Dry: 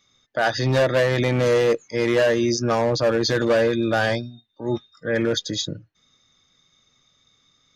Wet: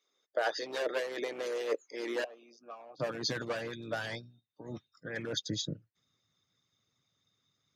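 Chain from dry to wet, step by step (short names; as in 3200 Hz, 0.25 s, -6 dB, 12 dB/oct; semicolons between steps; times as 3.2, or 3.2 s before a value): 2.24–3 vowel filter a; harmonic-percussive split harmonic -17 dB; high-pass sweep 430 Hz -> 110 Hz, 1.78–3.39; gain -9 dB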